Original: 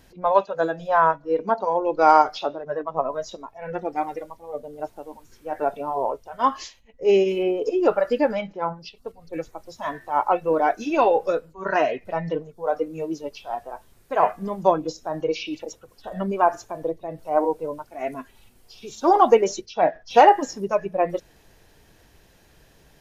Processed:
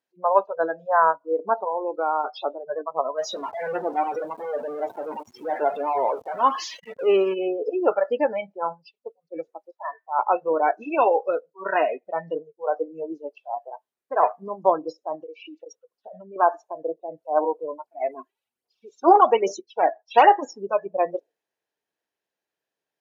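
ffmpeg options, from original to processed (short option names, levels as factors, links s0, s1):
-filter_complex "[0:a]asettb=1/sr,asplit=3[s0][s1][s2];[s0]atrim=end=1.574[s3];[s1]atrim=start=1.57:end=2.24,asetpts=PTS-STARTPTS,afade=t=in:d=0.004:c=qsin,afade=t=out:st=0.666:d=0.004:c=qsin,acompressor=threshold=0.0891:ratio=3:attack=3.2:release=140:knee=1:detection=peak[s4];[s2]atrim=start=2.236[s5];[s3][s4]acrossfade=d=0.004:c1=hsin:c2=qsin[s6];[s6][s5]acrossfade=d=0.004:c1=qsin:c2=hsin,asettb=1/sr,asplit=3[s7][s8][s9];[s7]atrim=end=3.184[s10];[s8]atrim=start=3.18:end=7.34,asetpts=PTS-STARTPTS,afade=t=in:d=0.004:c=qsin,afade=t=out:st=4.156:d=0.004:c=qsin,aeval=exprs='val(0)+0.5*0.0562*sgn(val(0))':c=same[s11];[s9]atrim=start=7.336[s12];[s10][s11]acrossfade=d=0.004:c1=hsin:c2=qsin[s13];[s13][s12]acrossfade=d=0.004:c1=qsin:c2=hsin,asettb=1/sr,asplit=3[s14][s15][s16];[s14]atrim=end=9.714[s17];[s15]atrim=start=9.71:end=10.19,asetpts=PTS-STARTPTS,afade=t=in:d=0.004:c=qsin,afade=t=out:st=0.476:d=0.004:c=qsin,highpass=670,lowpass=2000[s18];[s16]atrim=start=10.186[s19];[s17][s18]acrossfade=d=0.004:c1=hsin:c2=qsin[s20];[s20][s19]acrossfade=d=0.004:c1=qsin:c2=hsin,asettb=1/sr,asplit=3[s21][s22][s23];[s21]atrim=end=15.154[s24];[s22]atrim=start=15.15:end=16.36,asetpts=PTS-STARTPTS,afade=t=in:d=0.004:c=qsin,afade=t=out:st=1.206:d=0.004:c=qsin,acompressor=threshold=0.0251:ratio=12:attack=3.2:release=140:knee=1:detection=peak[s25];[s23]atrim=start=16.356[s26];[s24][s25]acrossfade=d=0.004:c1=hsin:c2=qsin[s27];[s27][s26]acrossfade=d=0.004:c1=qsin:c2=hsin,asettb=1/sr,asplit=3[s28][s29][s30];[s28]atrim=end=17.834[s31];[s29]atrim=start=17.83:end=20.27,asetpts=PTS-STARTPTS,afade=t=in:d=0.004:c=qsin,afade=t=out:st=2.436:d=0.004:c=qsin,aphaser=in_gain=1:out_gain=1:delay=3:decay=0.5:speed=1.2:type=triangular[s32];[s30]atrim=start=20.266[s33];[s31][s32]acrossfade=d=0.004:c1=hsin:c2=qsin[s34];[s34][s33]acrossfade=d=0.004:c1=qsin:c2=hsin,highpass=140,afftdn=nr=28:nf=-30,bass=f=250:g=-15,treble=f=4000:g=-3"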